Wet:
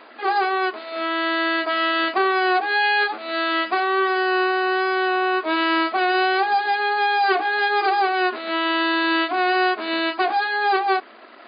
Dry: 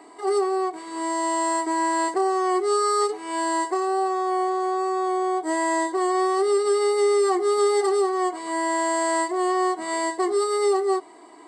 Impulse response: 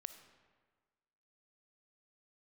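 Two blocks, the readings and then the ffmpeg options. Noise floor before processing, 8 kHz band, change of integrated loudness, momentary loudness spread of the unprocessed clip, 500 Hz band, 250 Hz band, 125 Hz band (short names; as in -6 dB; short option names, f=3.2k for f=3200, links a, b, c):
-46 dBFS, under -40 dB, +2.5 dB, 5 LU, -3.0 dB, +1.0 dB, n/a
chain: -af "aeval=exprs='abs(val(0))':c=same,afftfilt=real='re*between(b*sr/4096,210,4900)':imag='im*between(b*sr/4096,210,4900)':win_size=4096:overlap=0.75,volume=7.5dB"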